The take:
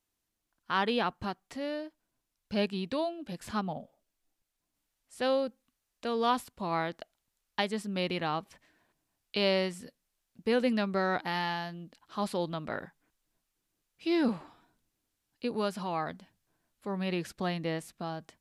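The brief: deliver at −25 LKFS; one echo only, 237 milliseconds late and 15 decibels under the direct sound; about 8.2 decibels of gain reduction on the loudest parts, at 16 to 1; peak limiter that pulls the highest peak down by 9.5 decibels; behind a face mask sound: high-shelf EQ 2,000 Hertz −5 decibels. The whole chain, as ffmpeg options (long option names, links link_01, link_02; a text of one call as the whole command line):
ffmpeg -i in.wav -af "acompressor=threshold=-31dB:ratio=16,alimiter=level_in=4dB:limit=-24dB:level=0:latency=1,volume=-4dB,highshelf=frequency=2000:gain=-5,aecho=1:1:237:0.178,volume=15dB" out.wav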